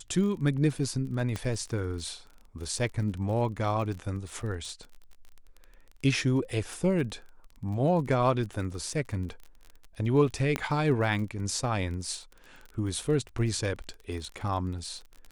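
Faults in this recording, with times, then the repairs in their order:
crackle 29/s -37 dBFS
1.36 pop -19 dBFS
10.56 pop -13 dBFS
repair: de-click

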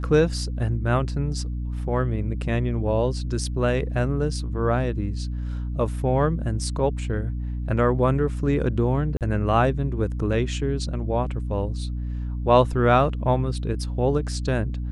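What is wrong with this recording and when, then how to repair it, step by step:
hum 60 Hz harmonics 5 -28 dBFS
9.17–9.21 gap 38 ms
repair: de-hum 60 Hz, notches 5; interpolate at 9.17, 38 ms

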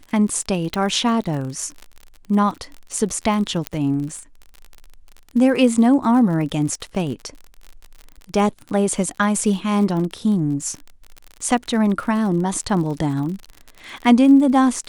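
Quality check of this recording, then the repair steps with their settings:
crackle 47/s -28 dBFS
0.74 pop -9 dBFS
3.67 pop -7 dBFS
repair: de-click

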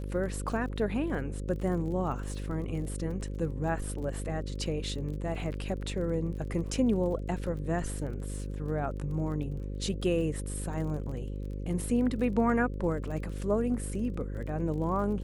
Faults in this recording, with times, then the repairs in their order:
buzz 50 Hz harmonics 11 -36 dBFS
crackle 32/s -40 dBFS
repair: de-click; de-hum 50 Hz, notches 11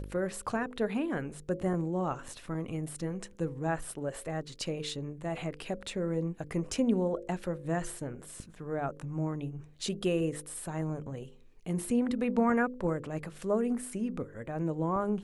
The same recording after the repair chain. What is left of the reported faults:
none

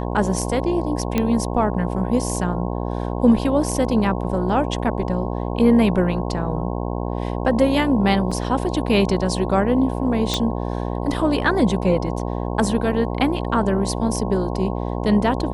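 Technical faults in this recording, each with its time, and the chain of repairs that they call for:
buzz 60 Hz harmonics 18 -25 dBFS
1.18 pop -7 dBFS
8.31–8.32 gap 5.4 ms
10.34 pop -6 dBFS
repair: de-click; de-hum 60 Hz, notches 18; interpolate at 8.31, 5.4 ms

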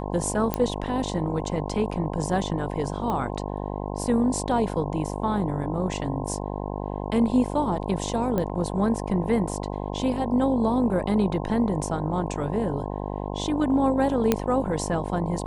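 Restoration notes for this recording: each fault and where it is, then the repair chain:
buzz 50 Hz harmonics 21 -31 dBFS
0.54 pop -9 dBFS
3.1 pop -17 dBFS
8.38 pop -14 dBFS
14.32 pop -6 dBFS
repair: de-click; de-hum 50 Hz, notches 21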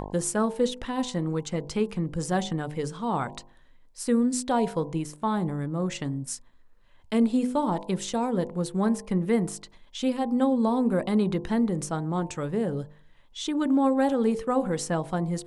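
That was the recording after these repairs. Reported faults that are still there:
0.54 pop

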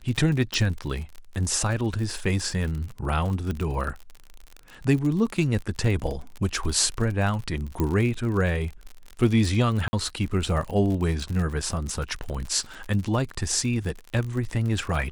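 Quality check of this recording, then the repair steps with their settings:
crackle 55/s -30 dBFS
0.54 pop
3.51 pop -18 dBFS
7.8 pop -13 dBFS
9.88–9.93 gap 50 ms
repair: de-click; interpolate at 9.88, 50 ms

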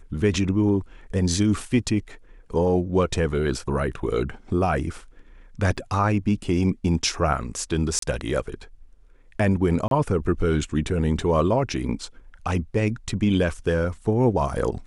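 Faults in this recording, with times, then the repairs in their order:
5.77–5.78 gap 5.5 ms
7.99–8.02 gap 33 ms
9.88–9.91 gap 32 ms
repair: interpolate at 5.77, 5.5 ms; interpolate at 7.99, 33 ms; interpolate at 9.88, 32 ms

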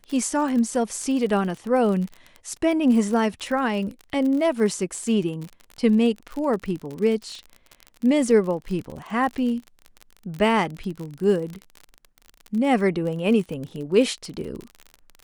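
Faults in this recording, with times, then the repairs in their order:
crackle 41/s -29 dBFS
8.91 gap 3 ms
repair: de-click; interpolate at 8.91, 3 ms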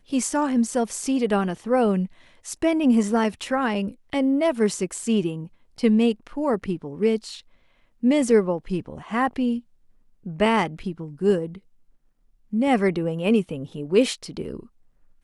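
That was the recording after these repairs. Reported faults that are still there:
none

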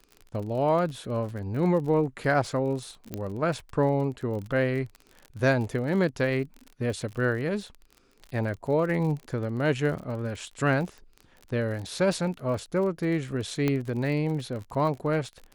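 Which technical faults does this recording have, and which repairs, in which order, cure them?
crackle 38/s -35 dBFS
3.14 pop -18 dBFS
13.68 pop -13 dBFS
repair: de-click

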